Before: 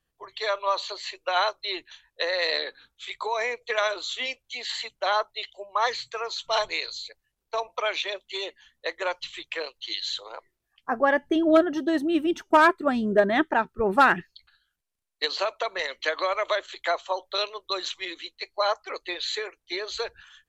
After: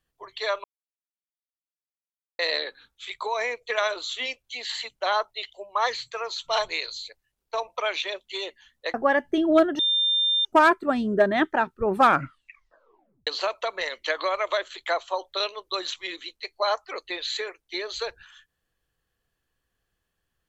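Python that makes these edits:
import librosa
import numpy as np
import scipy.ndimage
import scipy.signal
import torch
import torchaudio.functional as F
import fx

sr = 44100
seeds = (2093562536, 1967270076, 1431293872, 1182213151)

y = fx.edit(x, sr, fx.silence(start_s=0.64, length_s=1.75),
    fx.cut(start_s=8.94, length_s=1.98),
    fx.bleep(start_s=11.77, length_s=0.66, hz=3600.0, db=-19.5),
    fx.tape_stop(start_s=13.93, length_s=1.32), tone=tone)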